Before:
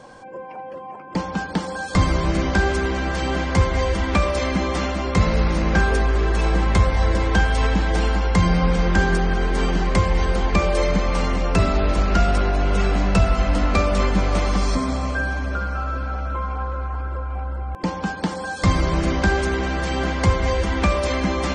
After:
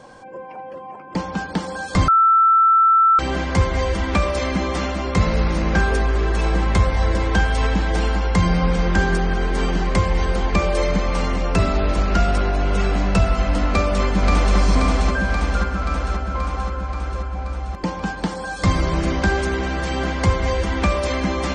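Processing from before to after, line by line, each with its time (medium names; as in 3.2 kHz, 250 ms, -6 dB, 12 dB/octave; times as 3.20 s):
2.08–3.19 s: bleep 1.33 kHz -10.5 dBFS
13.69–14.57 s: echo throw 530 ms, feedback 70%, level -2 dB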